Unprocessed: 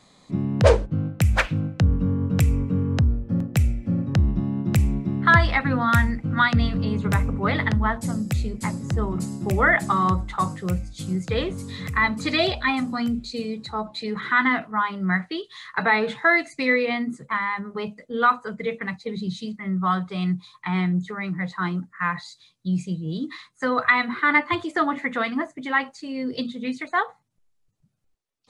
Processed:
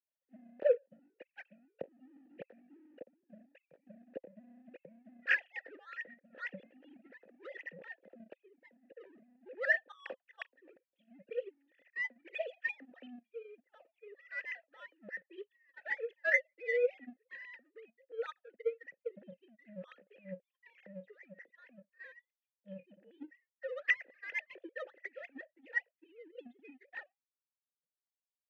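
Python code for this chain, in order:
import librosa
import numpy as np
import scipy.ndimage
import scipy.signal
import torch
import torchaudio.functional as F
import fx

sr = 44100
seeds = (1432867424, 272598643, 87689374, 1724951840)

y = fx.sine_speech(x, sr)
y = fx.power_curve(y, sr, exponent=1.4)
y = fx.vowel_filter(y, sr, vowel='e')
y = y * 10.0 ** (-3.0 / 20.0)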